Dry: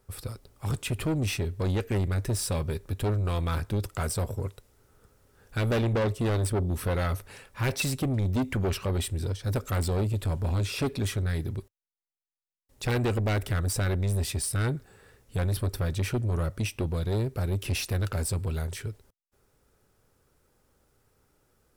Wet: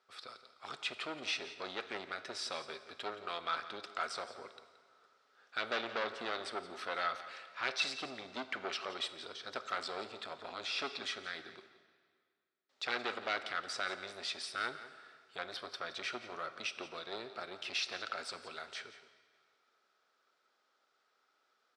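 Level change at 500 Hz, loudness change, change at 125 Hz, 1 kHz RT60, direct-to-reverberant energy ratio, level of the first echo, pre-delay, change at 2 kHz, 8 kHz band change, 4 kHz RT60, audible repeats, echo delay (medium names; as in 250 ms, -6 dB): -11.5 dB, -10.5 dB, -38.5 dB, 2.0 s, 10.0 dB, -14.5 dB, 19 ms, -1.5 dB, -14.5 dB, 1.7 s, 1, 173 ms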